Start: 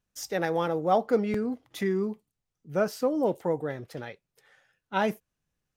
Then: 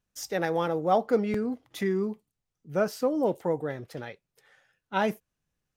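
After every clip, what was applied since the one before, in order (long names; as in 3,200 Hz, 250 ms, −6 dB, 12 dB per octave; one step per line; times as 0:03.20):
no processing that can be heard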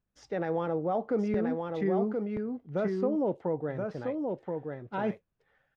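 brickwall limiter −18.5 dBFS, peak gain reduction 7.5 dB
head-to-tape spacing loss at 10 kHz 33 dB
single-tap delay 1,027 ms −4 dB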